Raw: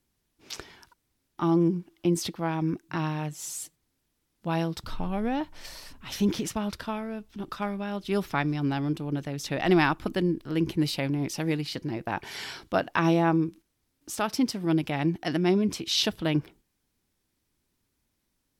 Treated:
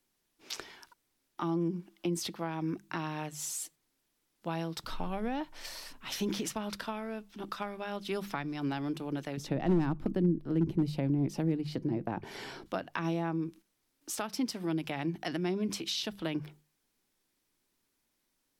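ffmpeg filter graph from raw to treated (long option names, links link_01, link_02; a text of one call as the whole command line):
ffmpeg -i in.wav -filter_complex "[0:a]asettb=1/sr,asplit=3[link_01][link_02][link_03];[link_01]atrim=end=9.374[link_04];[link_02]atrim=start=9.37:end=12.66,asetpts=PTS-STARTPTS,afade=type=in:duration=0.004:curve=qsin,afade=type=out:start_time=3.286:duration=0.004:curve=qsin,tiltshelf=frequency=800:gain=10,volume=10.5dB,asoftclip=hard,volume=-10.5dB[link_05];[link_03]atrim=start=12.656[link_06];[link_04][link_05]acrossfade=duration=0.004:curve1=hsin:curve2=qsin[link_07];[link_07][link_06]acrossfade=duration=0.004:curve1=qsin:curve2=hsin,equalizer=frequency=62:width=0.42:gain=-13.5,bandreject=frequency=50:width_type=h:width=6,bandreject=frequency=100:width_type=h:width=6,bandreject=frequency=150:width_type=h:width=6,bandreject=frequency=200:width_type=h:width=6,acrossover=split=220[link_08][link_09];[link_09]acompressor=threshold=-33dB:ratio=6[link_10];[link_08][link_10]amix=inputs=2:normalize=0" out.wav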